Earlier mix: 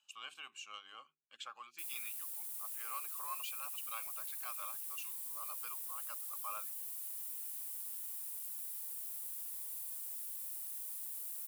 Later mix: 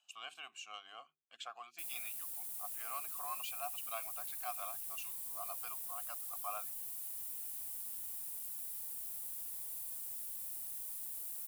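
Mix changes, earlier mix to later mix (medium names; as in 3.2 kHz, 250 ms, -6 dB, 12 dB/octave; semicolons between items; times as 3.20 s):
background: remove brick-wall FIR high-pass 520 Hz; master: remove Butterworth band-stop 700 Hz, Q 3.7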